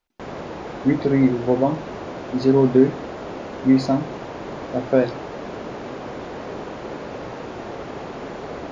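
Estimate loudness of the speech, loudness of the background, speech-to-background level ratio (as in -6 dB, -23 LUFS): -20.0 LUFS, -33.0 LUFS, 13.0 dB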